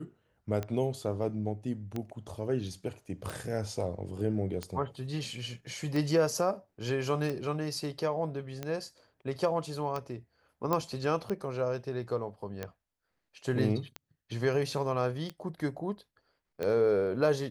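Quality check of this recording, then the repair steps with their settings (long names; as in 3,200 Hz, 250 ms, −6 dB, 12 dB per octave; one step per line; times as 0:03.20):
scratch tick 45 rpm −21 dBFS
0:10.73: click −15 dBFS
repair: click removal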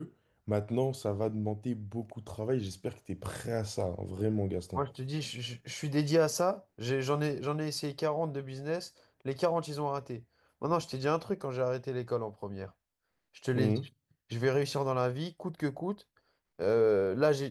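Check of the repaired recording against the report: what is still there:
none of them is left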